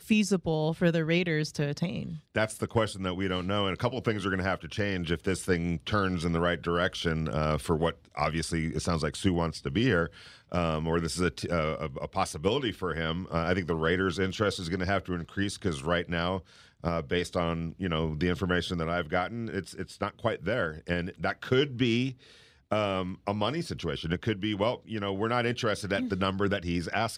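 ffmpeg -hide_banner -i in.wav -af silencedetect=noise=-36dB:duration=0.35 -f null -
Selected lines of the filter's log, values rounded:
silence_start: 10.07
silence_end: 10.52 | silence_duration: 0.45
silence_start: 16.39
silence_end: 16.84 | silence_duration: 0.45
silence_start: 22.12
silence_end: 22.72 | silence_duration: 0.60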